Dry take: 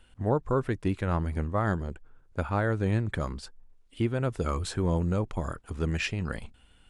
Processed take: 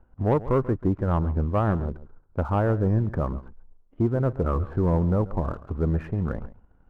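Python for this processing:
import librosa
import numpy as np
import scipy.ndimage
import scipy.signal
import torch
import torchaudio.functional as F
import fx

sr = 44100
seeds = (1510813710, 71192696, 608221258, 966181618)

p1 = scipy.signal.sosfilt(scipy.signal.butter(4, 1200.0, 'lowpass', fs=sr, output='sos'), x)
p2 = fx.leveller(p1, sr, passes=1)
p3 = p2 + fx.echo_single(p2, sr, ms=137, db=-17.0, dry=0)
y = F.gain(torch.from_numpy(p3), 2.0).numpy()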